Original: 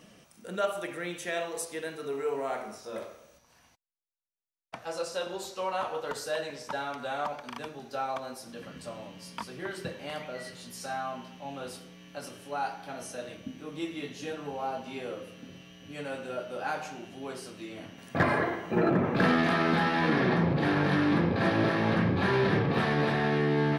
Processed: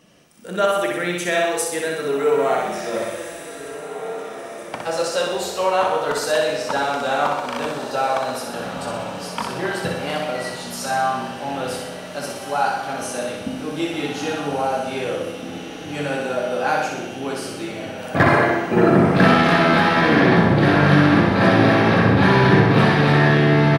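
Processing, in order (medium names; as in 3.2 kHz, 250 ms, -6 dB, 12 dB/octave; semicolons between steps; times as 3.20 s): on a send: feedback delay 62 ms, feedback 59%, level -4.5 dB; on the sum: level rider gain up to 11 dB; echo that smears into a reverb 1720 ms, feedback 51%, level -11 dB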